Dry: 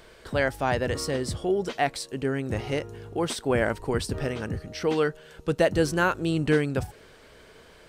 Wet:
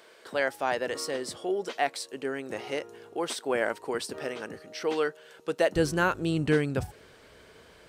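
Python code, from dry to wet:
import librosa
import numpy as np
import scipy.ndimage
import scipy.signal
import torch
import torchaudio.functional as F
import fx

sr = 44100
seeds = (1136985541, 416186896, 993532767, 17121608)

y = fx.highpass(x, sr, hz=fx.steps((0.0, 350.0), (5.76, 45.0)), slope=12)
y = y * librosa.db_to_amplitude(-2.0)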